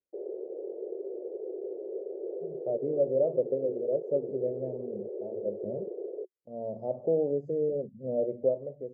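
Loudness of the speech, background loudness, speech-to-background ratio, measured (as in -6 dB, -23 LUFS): -31.5 LUFS, -38.5 LUFS, 7.0 dB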